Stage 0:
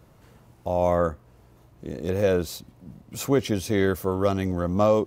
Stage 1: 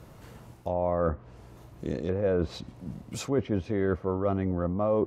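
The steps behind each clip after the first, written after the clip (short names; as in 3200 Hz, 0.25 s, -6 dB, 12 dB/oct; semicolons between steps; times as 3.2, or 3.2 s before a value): treble ducked by the level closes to 1500 Hz, closed at -22 dBFS; reverse; compressor 5:1, threshold -29 dBFS, peak gain reduction 12.5 dB; reverse; gain +5 dB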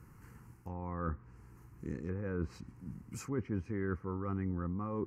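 fixed phaser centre 1500 Hz, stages 4; gain -5.5 dB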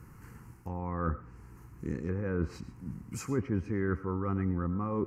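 reverb RT60 0.35 s, pre-delay 60 ms, DRR 14 dB; gain +5 dB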